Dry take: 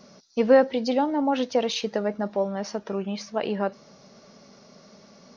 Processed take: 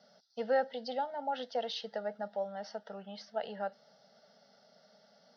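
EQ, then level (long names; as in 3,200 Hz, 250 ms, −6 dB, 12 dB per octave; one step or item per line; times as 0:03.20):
loudspeaker in its box 310–5,400 Hz, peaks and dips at 360 Hz −10 dB, 540 Hz −6 dB, 1,100 Hz −4 dB, 1,700 Hz −5 dB, 2,700 Hz −3 dB, 4,000 Hz −6 dB
phaser with its sweep stopped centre 1,600 Hz, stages 8
−4.0 dB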